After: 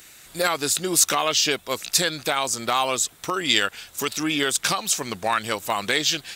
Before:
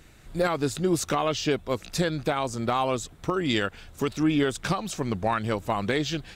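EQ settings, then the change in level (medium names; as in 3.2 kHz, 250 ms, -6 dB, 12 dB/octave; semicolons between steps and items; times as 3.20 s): tilt EQ +4 dB/octave; +3.5 dB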